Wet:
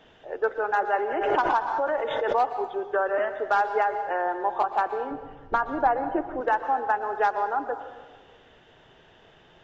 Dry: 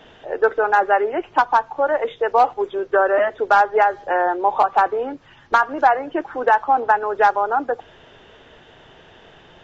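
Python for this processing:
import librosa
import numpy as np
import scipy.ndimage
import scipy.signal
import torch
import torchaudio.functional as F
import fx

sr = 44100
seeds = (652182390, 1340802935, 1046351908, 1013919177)

y = fx.tilt_eq(x, sr, slope=-3.5, at=(5.11, 6.41))
y = fx.rev_plate(y, sr, seeds[0], rt60_s=1.3, hf_ratio=0.6, predelay_ms=105, drr_db=9.5)
y = fx.pre_swell(y, sr, db_per_s=32.0, at=(0.95, 2.4))
y = y * 10.0 ** (-8.5 / 20.0)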